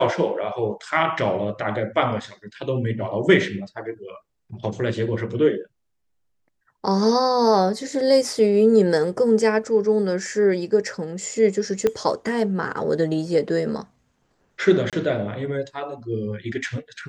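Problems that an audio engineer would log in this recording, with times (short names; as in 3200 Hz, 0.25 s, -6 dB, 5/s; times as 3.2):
11.87 pop -9 dBFS
14.9–14.93 gap 27 ms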